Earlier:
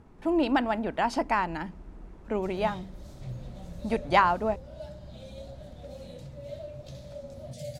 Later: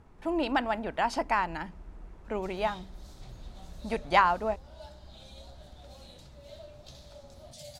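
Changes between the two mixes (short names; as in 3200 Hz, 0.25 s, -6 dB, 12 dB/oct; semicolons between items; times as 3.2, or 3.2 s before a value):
background: add ten-band EQ 125 Hz -11 dB, 500 Hz -12 dB, 1000 Hz +11 dB, 2000 Hz -6 dB, 4000 Hz +4 dB; master: add bell 250 Hz -6 dB 1.9 oct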